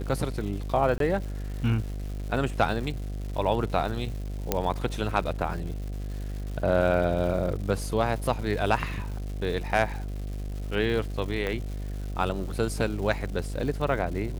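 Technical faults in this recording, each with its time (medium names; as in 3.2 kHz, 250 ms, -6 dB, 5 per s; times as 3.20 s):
buzz 50 Hz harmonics 15 -33 dBFS
crackle 330 per s -37 dBFS
0.98–1.00 s: dropout 23 ms
4.52 s: pop -8 dBFS
11.47 s: pop -18 dBFS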